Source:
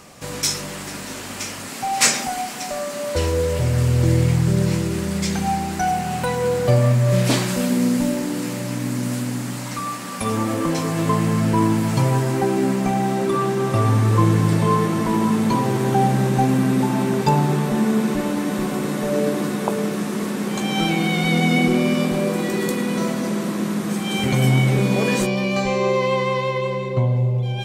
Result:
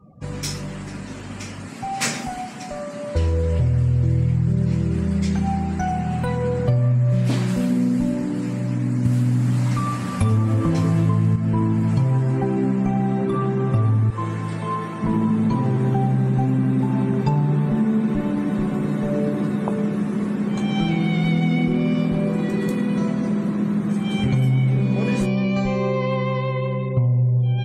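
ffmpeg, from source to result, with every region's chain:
-filter_complex "[0:a]asettb=1/sr,asplit=3[a][b][c];[a]atrim=end=9.054[d];[b]atrim=start=9.05:end=11.36,asetpts=PTS-STARTPTS,afade=t=in:d=0.004:c=qsin,afade=t=out:st=2.306:d=0.004:c=qsin,equalizer=f=95:w=2.7:g=12.5,acontrast=26[e];[c]atrim=start=11.356[f];[d][e]acrossfade=d=0.004:c1=hsin:c2=qsin[g];[g][f]acrossfade=d=0.004:c1=qsin:c2=hsin,asettb=1/sr,asplit=3[h][i][j];[h]atrim=end=14.104[k];[i]atrim=start=14.1:end=15.03,asetpts=PTS-STARTPTS,afade=t=in:d=0.004:c=qsin,afade=t=out:st=0.926:d=0.004:c=qsin,highpass=f=770:p=1,asplit=2[l][m];[m]adelay=26,volume=-11dB[n];[l][n]amix=inputs=2:normalize=0,atrim=end_sample=41013[o];[j]atrim=start=15.026[p];[k][o]acrossfade=d=0.004:c1=hsin:c2=qsin[q];[q][p]acrossfade=d=0.004:c1=qsin:c2=hsin,afftdn=nr=34:nf=-40,bass=f=250:g=11,treble=f=4k:g=-5,acompressor=threshold=-11dB:ratio=6,volume=-4.5dB"

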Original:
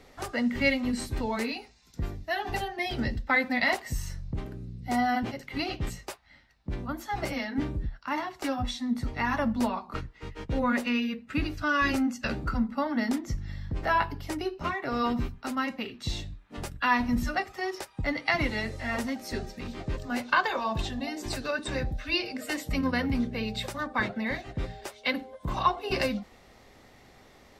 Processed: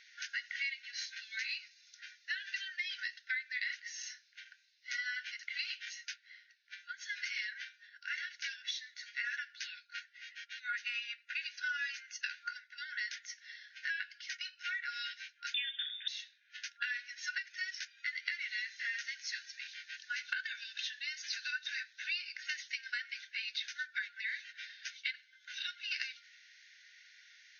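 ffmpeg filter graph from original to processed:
-filter_complex "[0:a]asettb=1/sr,asplit=3[a][b][c];[a]atrim=end=15.544[d];[b]atrim=start=15.54:end=16.08,asetpts=PTS-STARTPTS,afade=t=in:d=0.004:c=qsin,afade=t=out:st=0.536:d=0.004:c=qsin,lowpass=f=3.2k:t=q:w=0.5098,lowpass=f=3.2k:t=q:w=0.6013,lowpass=f=3.2k:t=q:w=0.9,lowpass=f=3.2k:t=q:w=2.563,afreqshift=-3800,acontrast=37[e];[c]atrim=start=16.076[f];[d][e]acrossfade=d=0.004:c1=hsin:c2=qsin[g];[g][f]acrossfade=d=0.004:c1=qsin:c2=hsin,afftfilt=real='re*between(b*sr/4096,1400,6700)':imag='im*between(b*sr/4096,1400,6700)':win_size=4096:overlap=0.75,acompressor=threshold=-36dB:ratio=10,volume=1.5dB"

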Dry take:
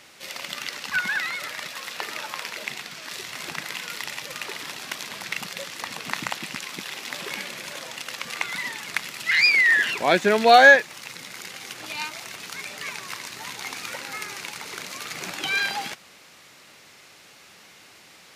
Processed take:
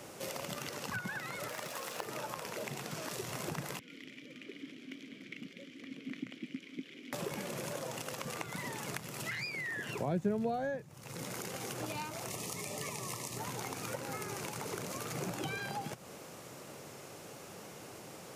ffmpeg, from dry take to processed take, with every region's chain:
-filter_complex "[0:a]asettb=1/sr,asplit=3[a][b][c];[a]atrim=end=1.484[d];[b]atrim=start=1.48:end=2.05,asetpts=PTS-STARTPTS,afade=t=in:d=0.004:c=qsin,afade=t=out:st=0.566:d=0.004:c=qsin,highpass=f=280:p=1,acrusher=bits=6:mode=log:mix=0:aa=0.000001[e];[c]atrim=start=2.046[f];[d][e]acrossfade=d=0.004:c1=hsin:c2=qsin[g];[g][f]acrossfade=d=0.004:c1=qsin:c2=hsin,asettb=1/sr,asplit=3[h][i][j];[h]atrim=end=3.794[k];[i]atrim=start=3.79:end=7.13,asetpts=PTS-STARTPTS,afade=t=in:d=0.004:c=qsin,afade=t=out:st=3.336:d=0.004:c=qsin,asplit=3[l][m][n];[l]bandpass=f=270:t=q:w=8,volume=0dB[o];[m]bandpass=f=2.29k:t=q:w=8,volume=-6dB[p];[n]bandpass=f=3.01k:t=q:w=8,volume=-9dB[q];[o][p][q]amix=inputs=3:normalize=0,equalizer=f=8.6k:t=o:w=0.27:g=-4[r];[j]atrim=start=7.126[s];[k][r]acrossfade=d=0.004:c1=hsin:c2=qsin[t];[t][s]acrossfade=d=0.004:c1=qsin:c2=hsin,asettb=1/sr,asplit=3[u][v][w];[u]atrim=end=12.304[x];[v]atrim=start=12.3:end=13.38,asetpts=PTS-STARTPTS,afade=t=in:d=0.004:c=qsin,afade=t=out:st=1.076:d=0.004:c=qsin,asuperstop=centerf=1500:order=20:qfactor=4.1,equalizer=f=8.6k:w=0.51:g=5.5[y];[w]atrim=start=13.376[z];[x][y]acrossfade=d=0.004:c1=hsin:c2=qsin[aa];[aa][z]acrossfade=d=0.004:c1=qsin:c2=hsin,equalizer=f=125:t=o:w=1:g=8,equalizer=f=500:t=o:w=1:g=4,equalizer=f=2k:t=o:w=1:g=-8,equalizer=f=4k:t=o:w=1:g=-9,acrossover=split=140[ab][ac];[ac]acompressor=threshold=-41dB:ratio=8[ad];[ab][ad]amix=inputs=2:normalize=0,equalizer=f=370:t=o:w=1.7:g=3.5,volume=2.5dB"

